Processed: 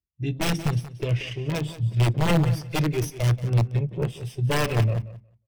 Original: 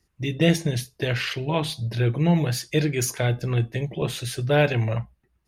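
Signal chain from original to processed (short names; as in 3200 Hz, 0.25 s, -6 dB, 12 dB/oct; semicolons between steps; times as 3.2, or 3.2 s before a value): minimum comb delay 0.36 ms; wrapped overs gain 15.5 dB; on a send: feedback echo 0.18 s, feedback 24%, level -10 dB; on the sum: spectral expander 1.5:1; gain +1.5 dB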